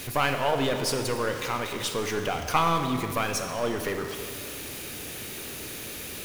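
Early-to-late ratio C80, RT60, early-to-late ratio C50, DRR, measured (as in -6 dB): 7.5 dB, 2.2 s, 6.5 dB, 5.5 dB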